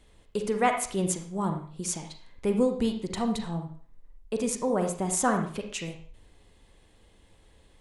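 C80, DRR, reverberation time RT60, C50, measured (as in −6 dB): 11.0 dB, 4.5 dB, 0.45 s, 6.5 dB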